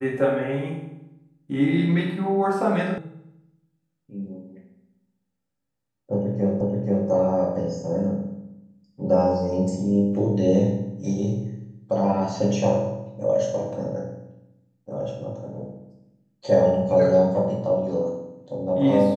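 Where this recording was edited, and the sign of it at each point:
2.98 sound cut off
6.61 repeat of the last 0.48 s

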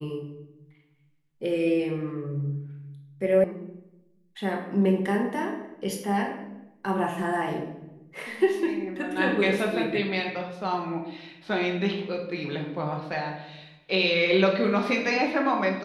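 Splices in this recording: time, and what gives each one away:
3.44 sound cut off

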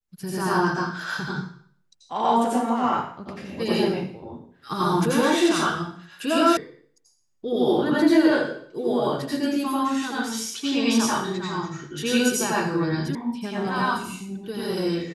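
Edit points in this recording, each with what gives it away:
6.57 sound cut off
13.15 sound cut off

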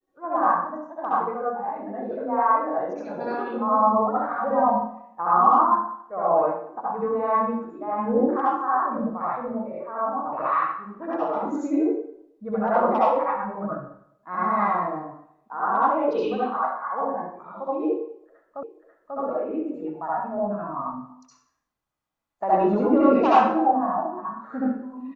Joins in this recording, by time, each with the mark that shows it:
18.63 repeat of the last 0.54 s

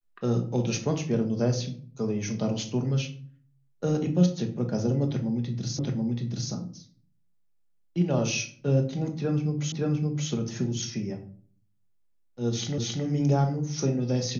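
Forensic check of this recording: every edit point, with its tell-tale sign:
5.79 repeat of the last 0.73 s
9.72 repeat of the last 0.57 s
12.78 repeat of the last 0.27 s

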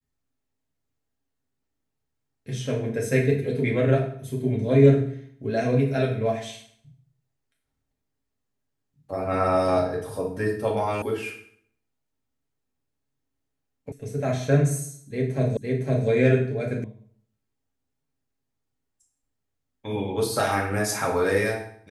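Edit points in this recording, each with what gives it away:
11.02 sound cut off
13.92 sound cut off
15.57 repeat of the last 0.51 s
16.84 sound cut off

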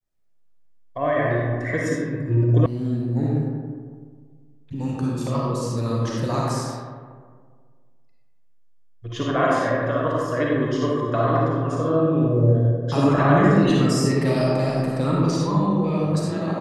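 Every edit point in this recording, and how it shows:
2.66 sound cut off

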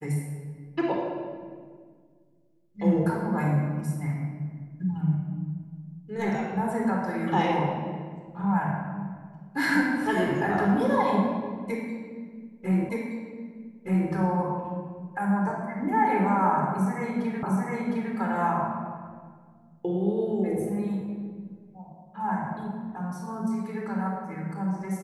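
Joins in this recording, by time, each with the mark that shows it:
12.89 repeat of the last 1.22 s
17.43 repeat of the last 0.71 s

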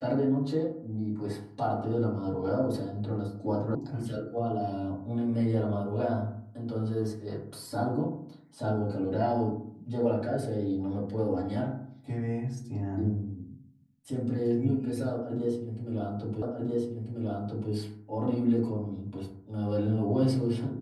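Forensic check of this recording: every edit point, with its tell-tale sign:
3.75 sound cut off
16.42 repeat of the last 1.29 s

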